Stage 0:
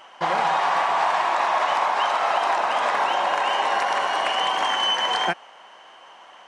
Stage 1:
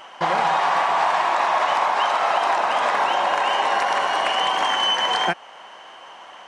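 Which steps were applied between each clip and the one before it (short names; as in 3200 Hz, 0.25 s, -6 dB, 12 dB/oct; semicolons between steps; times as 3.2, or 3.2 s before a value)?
low shelf 130 Hz +4.5 dB; in parallel at -2.5 dB: compressor, threshold -31 dBFS, peak gain reduction 13 dB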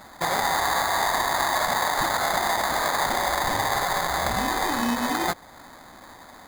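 sample-rate reducer 2800 Hz, jitter 0%; gain -4 dB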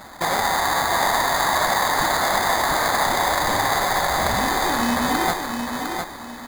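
in parallel at -10 dB: wrapped overs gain 23.5 dB; on the sum: feedback echo 0.706 s, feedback 30%, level -5.5 dB; gain +2.5 dB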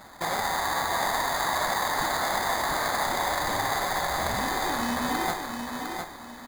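doubler 49 ms -13 dB; gain -7 dB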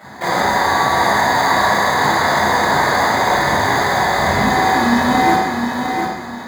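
reverb RT60 0.85 s, pre-delay 23 ms, DRR -4.5 dB; gain -1.5 dB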